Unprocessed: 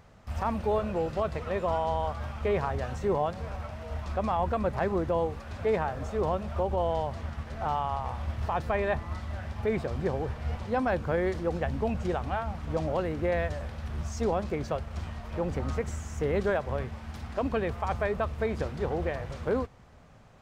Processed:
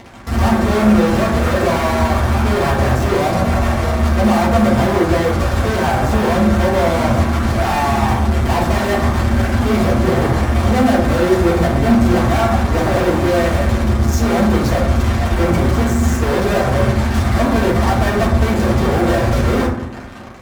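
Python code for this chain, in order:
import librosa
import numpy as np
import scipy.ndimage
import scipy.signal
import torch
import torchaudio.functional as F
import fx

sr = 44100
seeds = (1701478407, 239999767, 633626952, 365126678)

y = fx.fuzz(x, sr, gain_db=51.0, gate_db=-50.0)
y = fx.rev_fdn(y, sr, rt60_s=0.79, lf_ratio=1.4, hf_ratio=0.35, size_ms=26.0, drr_db=-7.5)
y = y * librosa.db_to_amplitude(-10.5)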